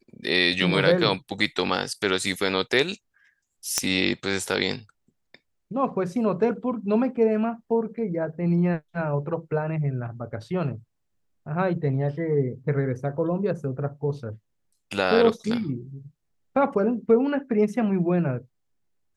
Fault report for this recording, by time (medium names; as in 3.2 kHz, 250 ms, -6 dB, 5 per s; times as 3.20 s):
3.78 s: pop -5 dBFS